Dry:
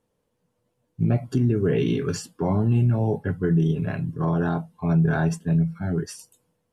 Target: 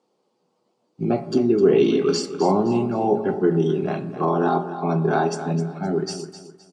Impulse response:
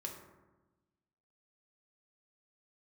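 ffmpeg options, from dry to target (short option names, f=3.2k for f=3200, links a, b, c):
-filter_complex "[0:a]highpass=f=190:w=0.5412,highpass=f=190:w=1.3066,equalizer=f=380:t=q:w=4:g=6,equalizer=f=790:t=q:w=4:g=8,equalizer=f=1.2k:t=q:w=4:g=5,equalizer=f=1.7k:t=q:w=4:g=-8,equalizer=f=4.6k:t=q:w=4:g=9,lowpass=f=8k:w=0.5412,lowpass=f=8k:w=1.3066,aecho=1:1:259|518|777:0.251|0.0829|0.0274,asplit=2[a][b];[1:a]atrim=start_sample=2205,afade=t=out:st=0.31:d=0.01,atrim=end_sample=14112[c];[b][c]afir=irnorm=-1:irlink=0,volume=-2.5dB[d];[a][d]amix=inputs=2:normalize=0"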